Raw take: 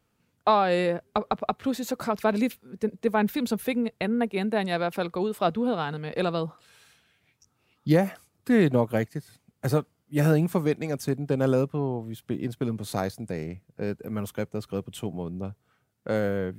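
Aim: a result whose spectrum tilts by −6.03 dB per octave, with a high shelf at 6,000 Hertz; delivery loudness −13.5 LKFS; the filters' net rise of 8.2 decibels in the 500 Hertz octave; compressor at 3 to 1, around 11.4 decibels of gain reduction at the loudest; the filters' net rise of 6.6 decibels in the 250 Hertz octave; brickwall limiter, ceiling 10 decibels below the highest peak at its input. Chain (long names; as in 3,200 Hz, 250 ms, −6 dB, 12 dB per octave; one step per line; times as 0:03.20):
parametric band 250 Hz +6 dB
parametric band 500 Hz +8 dB
high-shelf EQ 6,000 Hz +5.5 dB
downward compressor 3 to 1, threshold −25 dBFS
level +17 dB
brickwall limiter −2 dBFS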